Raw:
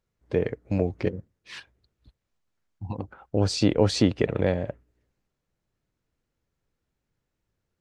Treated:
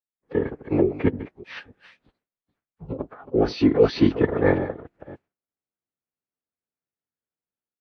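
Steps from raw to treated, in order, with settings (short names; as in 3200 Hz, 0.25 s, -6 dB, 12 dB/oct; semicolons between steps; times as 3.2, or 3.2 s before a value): reverse delay 0.286 s, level -14 dB; gate with hold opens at -58 dBFS; three-band isolator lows -22 dB, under 180 Hz, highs -15 dB, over 2900 Hz; AGC gain up to 9 dB; formant-preserving pitch shift -11.5 st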